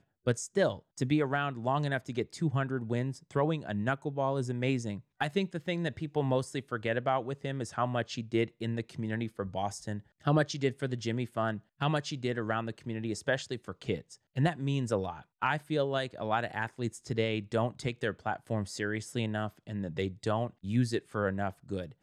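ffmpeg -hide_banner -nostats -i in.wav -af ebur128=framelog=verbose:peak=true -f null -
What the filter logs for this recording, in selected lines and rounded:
Integrated loudness:
  I:         -33.1 LUFS
  Threshold: -43.1 LUFS
Loudness range:
  LRA:         2.0 LU
  Threshold: -53.2 LUFS
  LRA low:   -34.1 LUFS
  LRA high:  -32.2 LUFS
True peak:
  Peak:      -14.1 dBFS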